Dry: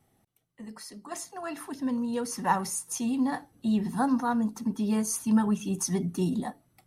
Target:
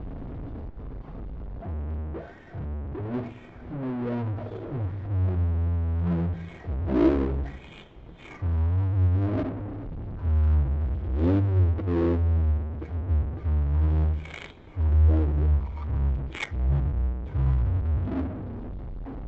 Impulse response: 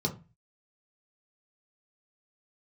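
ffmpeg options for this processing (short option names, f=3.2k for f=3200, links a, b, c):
-af "aeval=exprs='val(0)+0.5*0.0355*sgn(val(0))':c=same,adynamicsmooth=sensitivity=3.5:basefreq=920,asetrate=15700,aresample=44100,volume=1.5dB"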